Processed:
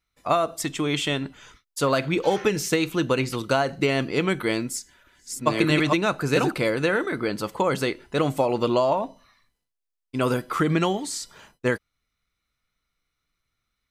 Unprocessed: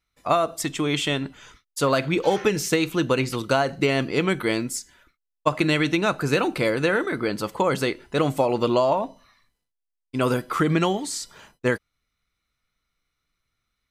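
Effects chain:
0:04.39–0:06.52: delay that plays each chunk backwards 655 ms, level −2.5 dB
level −1 dB

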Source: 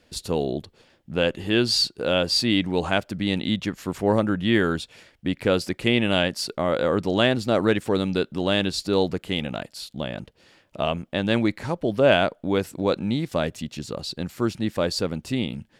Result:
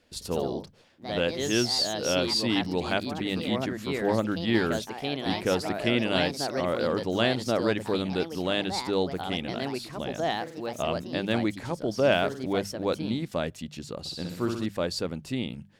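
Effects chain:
mains-hum notches 50/100/150/200 Hz
0:13.99–0:14.66: flutter between parallel walls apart 10.7 metres, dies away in 0.8 s
delay with pitch and tempo change per echo 110 ms, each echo +3 semitones, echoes 2, each echo −6 dB
level −5 dB

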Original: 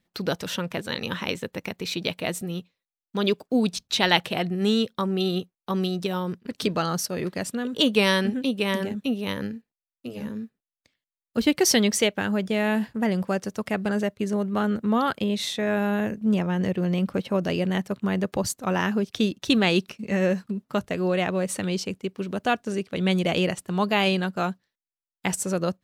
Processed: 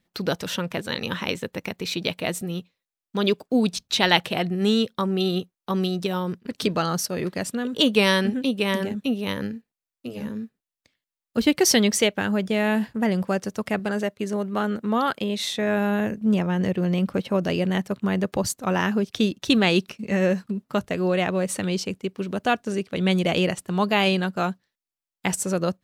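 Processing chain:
0:13.79–0:15.52: low-shelf EQ 140 Hz −11 dB
level +1.5 dB

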